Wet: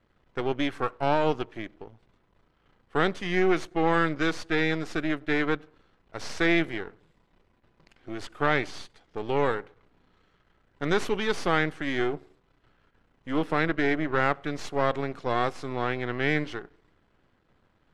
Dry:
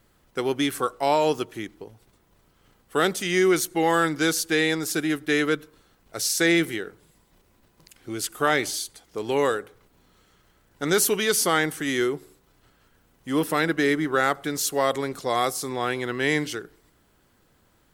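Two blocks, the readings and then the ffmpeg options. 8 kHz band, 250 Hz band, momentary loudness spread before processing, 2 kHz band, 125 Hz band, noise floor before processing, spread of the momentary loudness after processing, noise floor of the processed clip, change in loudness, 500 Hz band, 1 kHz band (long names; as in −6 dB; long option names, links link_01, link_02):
−20.5 dB, −3.0 dB, 12 LU, −2.5 dB, +0.5 dB, −63 dBFS, 15 LU, −68 dBFS, −3.5 dB, −3.5 dB, −2.5 dB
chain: -af "aeval=exprs='if(lt(val(0),0),0.251*val(0),val(0))':channel_layout=same,lowpass=3000"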